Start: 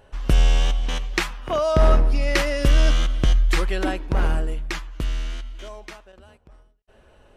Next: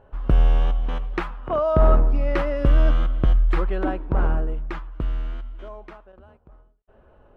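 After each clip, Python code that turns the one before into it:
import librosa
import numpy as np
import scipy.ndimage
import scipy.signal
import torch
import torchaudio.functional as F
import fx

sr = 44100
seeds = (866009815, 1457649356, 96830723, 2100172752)

y = fx.curve_eq(x, sr, hz=(1300.0, 1900.0, 3200.0, 6200.0), db=(0, -9, -13, -25))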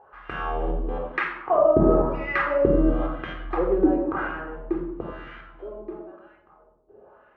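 y = fx.wah_lfo(x, sr, hz=0.99, low_hz=300.0, high_hz=2000.0, q=2.5)
y = fx.room_shoebox(y, sr, seeds[0], volume_m3=1900.0, walls='furnished', distance_m=3.8)
y = y * librosa.db_to_amplitude(6.5)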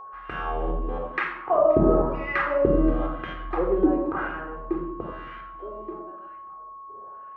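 y = fx.echo_wet_highpass(x, sr, ms=527, feedback_pct=33, hz=3600.0, wet_db=-18)
y = y + 10.0 ** (-38.0 / 20.0) * np.sin(2.0 * np.pi * 1100.0 * np.arange(len(y)) / sr)
y = y * librosa.db_to_amplitude(-1.0)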